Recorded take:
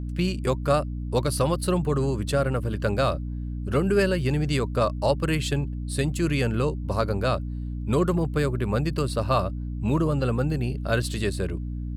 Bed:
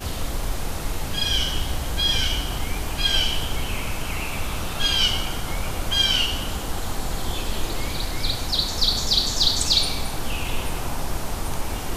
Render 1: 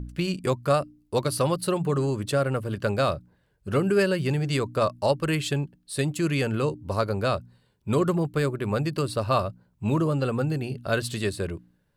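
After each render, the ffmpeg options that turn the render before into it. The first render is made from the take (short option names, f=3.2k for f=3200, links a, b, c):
-af "bandreject=f=60:t=h:w=4,bandreject=f=120:t=h:w=4,bandreject=f=180:t=h:w=4,bandreject=f=240:t=h:w=4,bandreject=f=300:t=h:w=4"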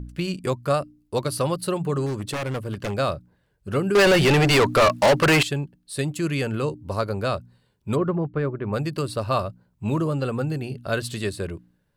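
-filter_complex "[0:a]asettb=1/sr,asplit=3[a][b][c];[a]atrim=end=2.064[d];[b]atrim=start=2.06:end=2.97,asetpts=PTS-STARTPTS,afade=t=in:d=0.004:c=qsin,afade=t=out:st=0.906:d=0.004:c=qsin,aeval=exprs='0.0794*(abs(mod(val(0)/0.0794+3,4)-2)-1)':c=same[e];[c]atrim=start=2.966[f];[d][e]acrossfade=d=0.004:c1=hsin:c2=qsin[g];[g][f]acrossfade=d=0.004:c1=qsin:c2=hsin,asettb=1/sr,asplit=3[h][i][j];[h]atrim=end=3.954[k];[i]atrim=start=3.95:end=5.43,asetpts=PTS-STARTPTS,afade=t=in:d=0.004:c=qsin,afade=t=out:st=1.476:d=0.004:c=qsin,asplit=2[l][m];[m]highpass=f=720:p=1,volume=31dB,asoftclip=type=tanh:threshold=-9dB[n];[l][n]amix=inputs=2:normalize=0,lowpass=f=4.8k:p=1,volume=-6dB[o];[j]atrim=start=5.426[p];[k][o]acrossfade=d=0.004:c1=hsin:c2=qsin[q];[q][p]acrossfade=d=0.004:c1=qsin:c2=hsin,asplit=3[r][s][t];[r]afade=t=out:st=7.95:d=0.02[u];[s]lowpass=1.7k,afade=t=in:st=7.95:d=0.02,afade=t=out:st=8.72:d=0.02[v];[t]afade=t=in:st=8.72:d=0.02[w];[u][v][w]amix=inputs=3:normalize=0"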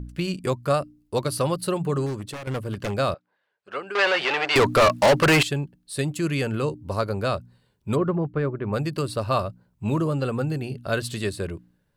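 -filter_complex "[0:a]asettb=1/sr,asplit=3[a][b][c];[a]atrim=end=3.144[d];[b]atrim=start=3.14:end=4.56,asetpts=PTS-STARTPTS,afade=t=in:d=0.004:c=qsin,afade=t=out:st=1.416:d=0.004:c=qsin,highpass=730,lowpass=3.6k[e];[c]atrim=start=4.556[f];[d][e]acrossfade=d=0.004:c1=hsin:c2=qsin[g];[g][f]acrossfade=d=0.004:c1=qsin:c2=hsin,asplit=2[h][i];[h]atrim=end=2.47,asetpts=PTS-STARTPTS,afade=t=out:st=2:d=0.47:silence=0.281838[j];[i]atrim=start=2.47,asetpts=PTS-STARTPTS,afade=t=in:d=0.004:c=hsin:silence=0.281838[k];[j][k]concat=n=2:v=0:a=1"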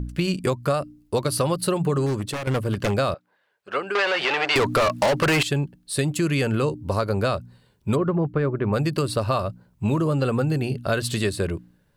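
-filter_complex "[0:a]asplit=2[a][b];[b]alimiter=limit=-18dB:level=0:latency=1:release=182,volume=0dB[c];[a][c]amix=inputs=2:normalize=0,acompressor=threshold=-18dB:ratio=6"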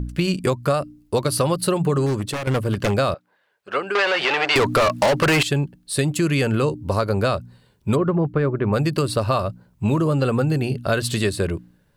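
-af "volume=2.5dB"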